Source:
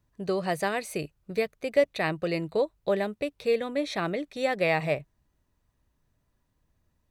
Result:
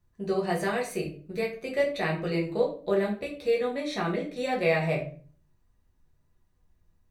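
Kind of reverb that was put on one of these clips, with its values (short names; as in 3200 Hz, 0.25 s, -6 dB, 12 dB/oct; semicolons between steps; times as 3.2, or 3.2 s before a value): shoebox room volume 31 m³, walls mixed, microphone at 0.82 m; gain -5.5 dB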